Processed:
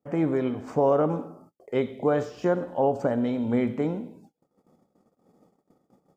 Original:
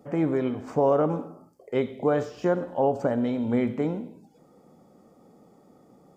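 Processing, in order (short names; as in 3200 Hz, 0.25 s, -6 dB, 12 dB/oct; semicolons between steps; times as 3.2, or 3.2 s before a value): gate -53 dBFS, range -28 dB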